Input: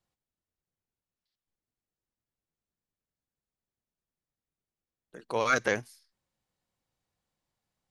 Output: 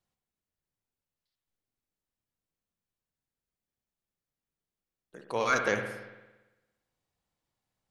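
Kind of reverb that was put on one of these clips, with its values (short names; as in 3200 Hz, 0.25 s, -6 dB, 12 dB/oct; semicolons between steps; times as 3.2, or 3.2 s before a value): spring tank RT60 1.1 s, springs 57 ms, chirp 55 ms, DRR 5 dB; gain -1.5 dB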